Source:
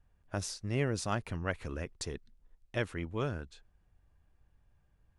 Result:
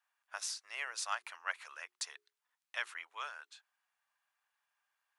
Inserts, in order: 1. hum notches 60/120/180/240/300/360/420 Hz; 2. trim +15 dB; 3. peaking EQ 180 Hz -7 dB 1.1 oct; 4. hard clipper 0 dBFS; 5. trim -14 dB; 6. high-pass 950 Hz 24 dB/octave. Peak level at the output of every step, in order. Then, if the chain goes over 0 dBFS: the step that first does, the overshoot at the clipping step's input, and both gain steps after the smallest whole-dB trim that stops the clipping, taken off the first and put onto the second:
-18.5 dBFS, -3.5 dBFS, -4.0 dBFS, -4.0 dBFS, -18.0 dBFS, -20.0 dBFS; nothing clips

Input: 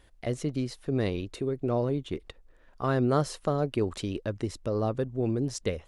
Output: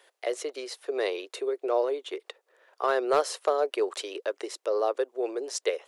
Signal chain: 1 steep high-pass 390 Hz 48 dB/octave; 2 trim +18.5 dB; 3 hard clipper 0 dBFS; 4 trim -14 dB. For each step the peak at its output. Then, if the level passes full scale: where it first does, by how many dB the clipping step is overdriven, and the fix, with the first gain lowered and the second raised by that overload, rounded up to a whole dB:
-14.5 dBFS, +4.0 dBFS, 0.0 dBFS, -14.0 dBFS; step 2, 4.0 dB; step 2 +14.5 dB, step 4 -10 dB

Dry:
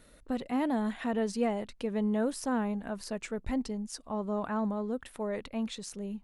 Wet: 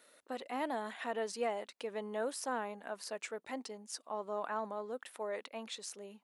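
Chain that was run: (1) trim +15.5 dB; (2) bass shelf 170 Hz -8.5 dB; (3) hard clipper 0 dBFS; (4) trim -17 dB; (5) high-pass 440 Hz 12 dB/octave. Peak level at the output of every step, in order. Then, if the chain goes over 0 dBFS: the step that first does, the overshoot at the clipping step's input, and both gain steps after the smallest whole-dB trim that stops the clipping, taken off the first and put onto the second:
-3.0 dBFS, -4.5 dBFS, -4.5 dBFS, -21.5 dBFS, -23.5 dBFS; nothing clips

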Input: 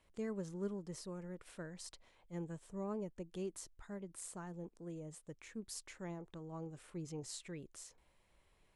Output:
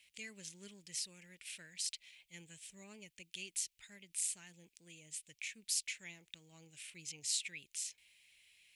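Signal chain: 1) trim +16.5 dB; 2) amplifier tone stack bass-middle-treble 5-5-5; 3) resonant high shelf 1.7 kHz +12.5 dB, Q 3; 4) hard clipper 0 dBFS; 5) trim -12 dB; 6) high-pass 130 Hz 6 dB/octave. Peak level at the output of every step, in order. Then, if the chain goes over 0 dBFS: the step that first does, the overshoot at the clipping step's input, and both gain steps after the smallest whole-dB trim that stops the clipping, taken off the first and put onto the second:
-12.5 dBFS, -19.0 dBFS, -6.0 dBFS, -6.0 dBFS, -18.0 dBFS, -18.0 dBFS; nothing clips

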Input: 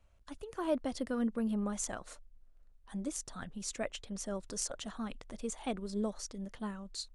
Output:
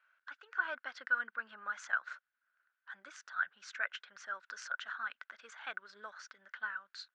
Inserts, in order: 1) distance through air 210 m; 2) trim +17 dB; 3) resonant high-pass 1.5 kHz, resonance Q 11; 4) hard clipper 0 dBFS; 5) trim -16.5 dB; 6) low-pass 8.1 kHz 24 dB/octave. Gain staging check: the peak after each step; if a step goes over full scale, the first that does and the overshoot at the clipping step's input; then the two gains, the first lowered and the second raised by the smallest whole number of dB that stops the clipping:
-21.0 dBFS, -4.0 dBFS, -2.0 dBFS, -2.0 dBFS, -18.5 dBFS, -18.5 dBFS; nothing clips

